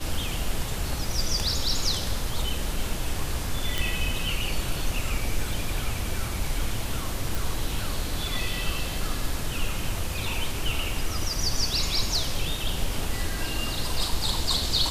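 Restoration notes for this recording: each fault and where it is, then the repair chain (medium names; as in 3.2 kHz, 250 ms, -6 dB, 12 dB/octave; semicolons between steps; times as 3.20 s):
3.78 s: pop
7.35 s: pop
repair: de-click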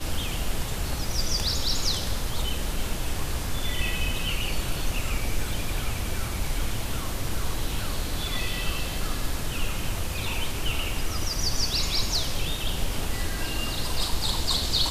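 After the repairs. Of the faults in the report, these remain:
nothing left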